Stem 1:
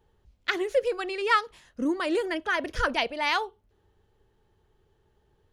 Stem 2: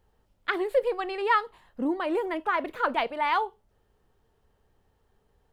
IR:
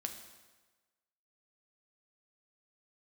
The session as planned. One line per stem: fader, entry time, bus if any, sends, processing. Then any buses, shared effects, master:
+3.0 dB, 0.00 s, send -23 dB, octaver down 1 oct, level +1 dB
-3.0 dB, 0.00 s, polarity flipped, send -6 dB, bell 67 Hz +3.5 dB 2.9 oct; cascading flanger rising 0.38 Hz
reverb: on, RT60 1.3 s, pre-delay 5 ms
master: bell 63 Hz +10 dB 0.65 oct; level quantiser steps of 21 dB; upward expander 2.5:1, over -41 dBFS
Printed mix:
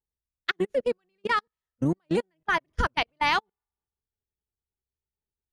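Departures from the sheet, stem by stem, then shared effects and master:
stem 1: send off; stem 2: polarity flipped

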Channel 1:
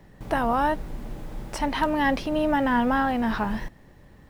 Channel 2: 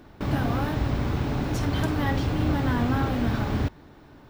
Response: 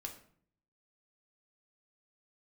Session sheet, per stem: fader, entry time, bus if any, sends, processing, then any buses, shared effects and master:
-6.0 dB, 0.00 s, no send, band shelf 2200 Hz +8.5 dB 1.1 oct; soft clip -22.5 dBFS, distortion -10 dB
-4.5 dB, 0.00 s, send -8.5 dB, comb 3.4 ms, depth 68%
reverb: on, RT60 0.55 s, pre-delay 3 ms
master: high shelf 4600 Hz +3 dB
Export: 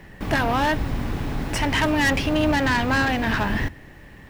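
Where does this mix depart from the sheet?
stem 1 -6.0 dB -> +4.5 dB; stem 2: missing comb 3.4 ms, depth 68%

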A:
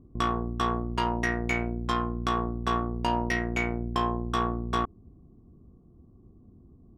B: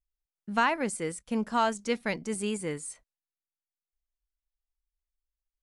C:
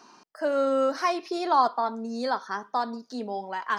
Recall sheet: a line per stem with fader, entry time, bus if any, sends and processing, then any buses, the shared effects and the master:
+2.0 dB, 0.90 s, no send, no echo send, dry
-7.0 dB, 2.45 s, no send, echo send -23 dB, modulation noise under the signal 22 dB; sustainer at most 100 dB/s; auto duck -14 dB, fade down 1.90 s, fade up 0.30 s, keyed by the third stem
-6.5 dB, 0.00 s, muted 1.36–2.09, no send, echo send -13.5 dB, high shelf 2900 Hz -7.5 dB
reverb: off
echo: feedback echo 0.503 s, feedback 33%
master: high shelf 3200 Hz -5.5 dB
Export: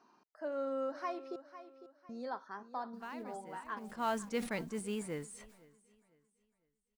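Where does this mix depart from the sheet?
stem A: muted; stem C -6.5 dB -> -12.5 dB

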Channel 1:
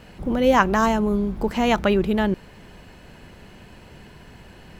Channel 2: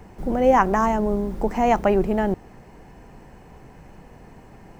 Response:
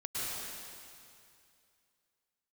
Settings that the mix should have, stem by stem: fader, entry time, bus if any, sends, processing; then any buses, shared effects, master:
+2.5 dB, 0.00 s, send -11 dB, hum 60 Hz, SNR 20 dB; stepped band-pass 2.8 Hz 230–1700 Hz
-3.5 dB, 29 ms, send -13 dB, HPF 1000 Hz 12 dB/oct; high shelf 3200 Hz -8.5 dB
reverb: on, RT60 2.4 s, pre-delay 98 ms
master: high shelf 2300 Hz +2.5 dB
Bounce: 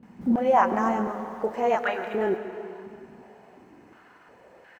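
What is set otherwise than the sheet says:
stem 1: missing hum 60 Hz, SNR 20 dB; master: missing high shelf 2300 Hz +2.5 dB

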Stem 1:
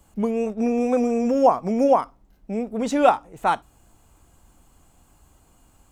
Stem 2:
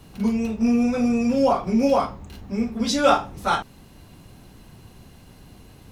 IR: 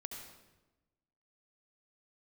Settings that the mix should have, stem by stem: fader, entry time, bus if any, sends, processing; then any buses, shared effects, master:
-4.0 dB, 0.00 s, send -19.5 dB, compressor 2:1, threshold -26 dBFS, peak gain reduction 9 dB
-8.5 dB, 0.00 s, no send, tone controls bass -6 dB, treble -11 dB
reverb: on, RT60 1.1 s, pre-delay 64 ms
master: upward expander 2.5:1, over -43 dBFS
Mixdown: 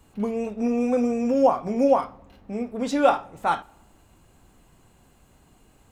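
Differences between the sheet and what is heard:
stem 1: missing compressor 2:1, threshold -26 dBFS, peak gain reduction 9 dB; master: missing upward expander 2.5:1, over -43 dBFS

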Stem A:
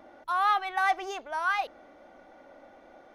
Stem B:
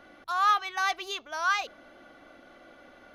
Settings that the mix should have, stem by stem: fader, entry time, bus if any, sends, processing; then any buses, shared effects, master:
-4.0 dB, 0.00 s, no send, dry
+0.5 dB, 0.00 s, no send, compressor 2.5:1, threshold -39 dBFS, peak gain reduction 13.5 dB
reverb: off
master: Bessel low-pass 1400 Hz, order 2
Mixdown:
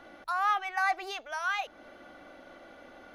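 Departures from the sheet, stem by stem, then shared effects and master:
stem B: polarity flipped; master: missing Bessel low-pass 1400 Hz, order 2

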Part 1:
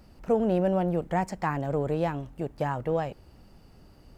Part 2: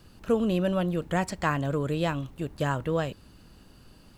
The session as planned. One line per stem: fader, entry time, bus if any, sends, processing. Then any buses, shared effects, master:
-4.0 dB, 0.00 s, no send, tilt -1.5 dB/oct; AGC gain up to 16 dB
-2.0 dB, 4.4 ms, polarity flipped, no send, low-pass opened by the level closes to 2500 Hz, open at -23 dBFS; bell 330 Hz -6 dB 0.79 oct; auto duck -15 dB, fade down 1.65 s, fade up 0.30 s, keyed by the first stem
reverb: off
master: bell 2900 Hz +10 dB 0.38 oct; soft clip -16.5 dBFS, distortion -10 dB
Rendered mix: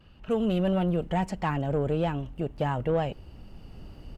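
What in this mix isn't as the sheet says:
stem 1 -4.0 dB -> -11.5 dB; stem 2: polarity flipped

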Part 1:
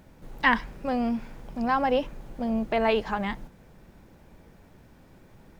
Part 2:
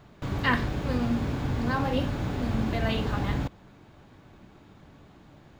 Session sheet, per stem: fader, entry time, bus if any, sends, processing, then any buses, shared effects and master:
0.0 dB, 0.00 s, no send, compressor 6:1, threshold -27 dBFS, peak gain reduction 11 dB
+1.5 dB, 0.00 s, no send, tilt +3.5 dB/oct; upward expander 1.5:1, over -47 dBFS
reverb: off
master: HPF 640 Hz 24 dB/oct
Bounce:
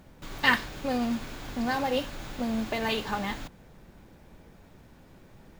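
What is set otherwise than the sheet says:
stem 2: polarity flipped; master: missing HPF 640 Hz 24 dB/oct

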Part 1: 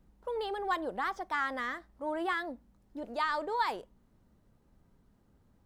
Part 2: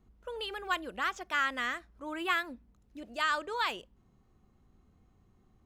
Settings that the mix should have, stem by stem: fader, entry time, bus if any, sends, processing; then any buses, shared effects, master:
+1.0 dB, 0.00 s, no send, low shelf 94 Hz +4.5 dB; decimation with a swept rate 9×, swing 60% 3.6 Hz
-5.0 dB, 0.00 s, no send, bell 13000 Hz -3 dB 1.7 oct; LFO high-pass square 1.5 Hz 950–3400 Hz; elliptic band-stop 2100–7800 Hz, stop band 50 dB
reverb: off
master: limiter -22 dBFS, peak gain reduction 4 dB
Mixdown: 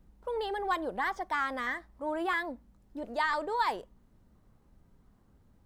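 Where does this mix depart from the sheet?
stem 1: missing decimation with a swept rate 9×, swing 60% 3.6 Hz; master: missing limiter -22 dBFS, peak gain reduction 4 dB

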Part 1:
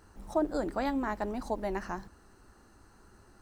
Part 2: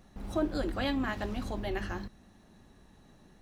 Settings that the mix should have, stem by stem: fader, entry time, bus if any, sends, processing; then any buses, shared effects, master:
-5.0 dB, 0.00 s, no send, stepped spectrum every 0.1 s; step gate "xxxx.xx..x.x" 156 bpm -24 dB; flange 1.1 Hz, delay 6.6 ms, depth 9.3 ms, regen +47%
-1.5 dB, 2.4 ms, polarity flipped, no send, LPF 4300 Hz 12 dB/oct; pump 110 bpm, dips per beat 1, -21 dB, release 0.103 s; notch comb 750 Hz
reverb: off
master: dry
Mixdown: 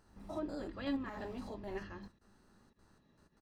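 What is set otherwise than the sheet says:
stem 2 -1.5 dB -> -10.0 dB; master: extra bell 4800 Hz +5 dB 0.29 oct

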